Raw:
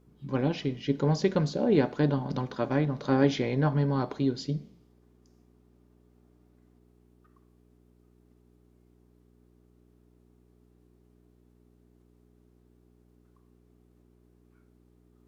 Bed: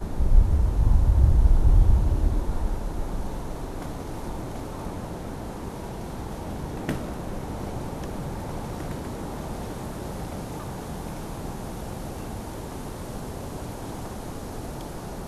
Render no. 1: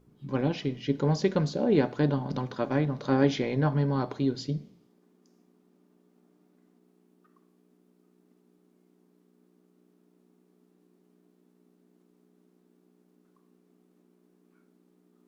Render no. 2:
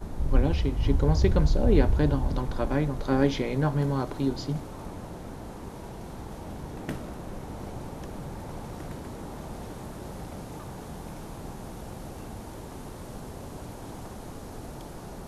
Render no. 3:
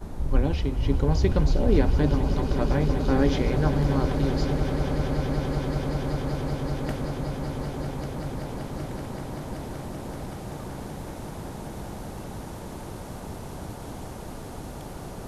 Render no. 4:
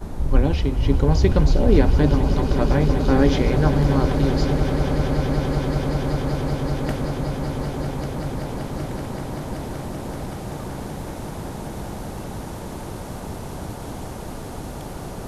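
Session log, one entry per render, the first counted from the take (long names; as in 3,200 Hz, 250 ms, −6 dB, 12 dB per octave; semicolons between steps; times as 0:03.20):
hum removal 60 Hz, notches 2
mix in bed −5.5 dB
echo that builds up and dies away 191 ms, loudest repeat 8, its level −12 dB
level +5 dB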